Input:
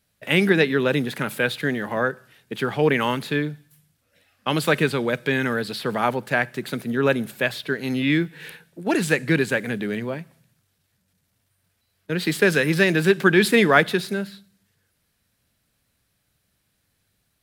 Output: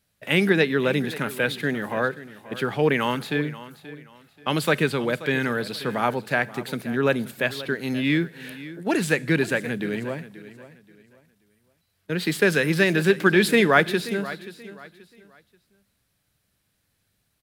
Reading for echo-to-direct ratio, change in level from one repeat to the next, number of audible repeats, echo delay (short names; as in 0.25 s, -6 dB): -15.5 dB, -10.5 dB, 2, 0.531 s